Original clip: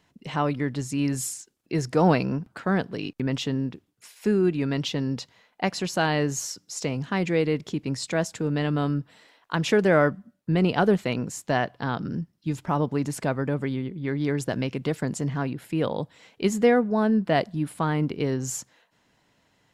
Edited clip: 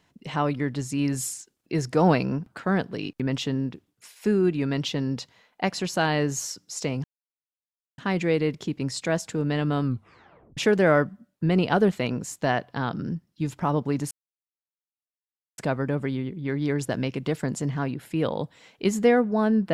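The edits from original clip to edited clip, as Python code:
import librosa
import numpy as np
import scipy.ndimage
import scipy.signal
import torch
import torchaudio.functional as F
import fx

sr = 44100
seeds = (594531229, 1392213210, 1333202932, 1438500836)

y = fx.edit(x, sr, fx.insert_silence(at_s=7.04, length_s=0.94),
    fx.tape_stop(start_s=8.89, length_s=0.74),
    fx.insert_silence(at_s=13.17, length_s=1.47), tone=tone)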